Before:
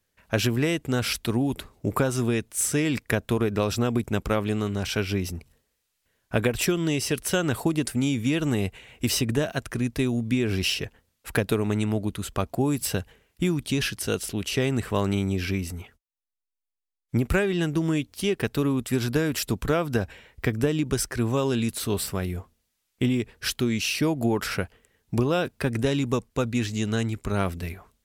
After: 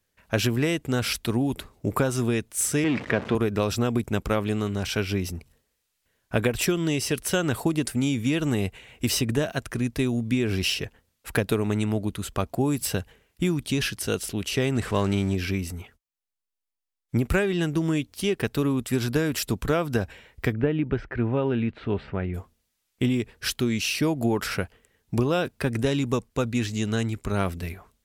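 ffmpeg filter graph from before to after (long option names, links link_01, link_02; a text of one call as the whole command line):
ffmpeg -i in.wav -filter_complex "[0:a]asettb=1/sr,asplit=3[link_01][link_02][link_03];[link_01]atrim=end=2.844[link_04];[link_02]atrim=start=2.84:end=3.35,asetpts=PTS-STARTPTS,afade=type=in:duration=0.004:curve=qsin,afade=type=out:start_time=0.506:duration=0.004:curve=qsin,aeval=exprs='val(0)+0.5*0.0473*sgn(val(0))':channel_layout=same,highpass=150,lowpass=2700[link_05];[link_03]atrim=start=3.346[link_06];[link_04][link_05]acrossfade=duration=0.004:curve1=hsin:curve2=qsin[link_07];[link_07][link_06]acrossfade=duration=0.004:curve1=qsin:curve2=hsin,asettb=1/sr,asplit=3[link_08][link_09][link_10];[link_08]atrim=end=14.754[link_11];[link_09]atrim=start=14.75:end=15.35,asetpts=PTS-STARTPTS,afade=type=in:duration=0.004:curve=qsin,afade=type=out:start_time=0.596:duration=0.004:curve=qsin,aeval=exprs='val(0)+0.5*0.0158*sgn(val(0))':channel_layout=same,lowpass=10000[link_12];[link_10]atrim=start=15.346[link_13];[link_11][link_12]acrossfade=duration=0.004:curve1=hsin:curve2=qsin[link_14];[link_14][link_13]acrossfade=duration=0.004:curve1=qsin:curve2=hsin,asettb=1/sr,asplit=3[link_15][link_16][link_17];[link_15]atrim=end=20.534[link_18];[link_16]atrim=start=20.53:end=22.34,asetpts=PTS-STARTPTS,afade=type=in:duration=0.004:curve=qsin,afade=type=out:start_time=1.806:duration=0.004:curve=qsin,lowpass=frequency=2500:width=0.5412,lowpass=frequency=2500:width=1.3066,bandreject=frequency=1100:width=8.5[link_19];[link_17]atrim=start=22.336[link_20];[link_18][link_19]acrossfade=duration=0.004:curve1=hsin:curve2=qsin[link_21];[link_21][link_20]acrossfade=duration=0.004:curve1=qsin:curve2=hsin" out.wav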